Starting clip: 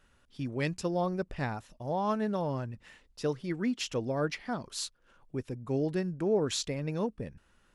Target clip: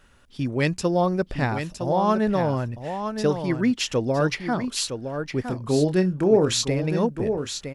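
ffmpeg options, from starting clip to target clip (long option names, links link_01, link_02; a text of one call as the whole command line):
ffmpeg -i in.wav -filter_complex "[0:a]asplit=3[link_01][link_02][link_03];[link_01]afade=type=out:start_time=5.48:duration=0.02[link_04];[link_02]asplit=2[link_05][link_06];[link_06]adelay=27,volume=-9dB[link_07];[link_05][link_07]amix=inputs=2:normalize=0,afade=type=in:start_time=5.48:duration=0.02,afade=type=out:start_time=6.63:duration=0.02[link_08];[link_03]afade=type=in:start_time=6.63:duration=0.02[link_09];[link_04][link_08][link_09]amix=inputs=3:normalize=0,aecho=1:1:962:0.398,volume=9dB" out.wav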